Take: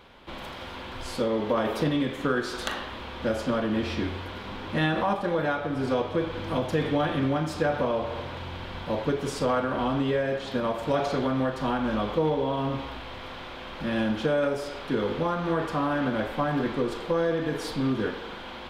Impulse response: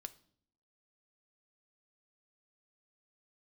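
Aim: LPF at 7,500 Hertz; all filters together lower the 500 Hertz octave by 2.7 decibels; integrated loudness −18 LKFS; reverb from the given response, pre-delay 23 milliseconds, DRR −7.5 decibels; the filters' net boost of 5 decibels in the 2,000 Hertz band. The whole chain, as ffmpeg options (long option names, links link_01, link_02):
-filter_complex "[0:a]lowpass=7500,equalizer=frequency=500:width_type=o:gain=-3.5,equalizer=frequency=2000:width_type=o:gain=7,asplit=2[link_01][link_02];[1:a]atrim=start_sample=2205,adelay=23[link_03];[link_02][link_03]afir=irnorm=-1:irlink=0,volume=12.5dB[link_04];[link_01][link_04]amix=inputs=2:normalize=0,volume=2dB"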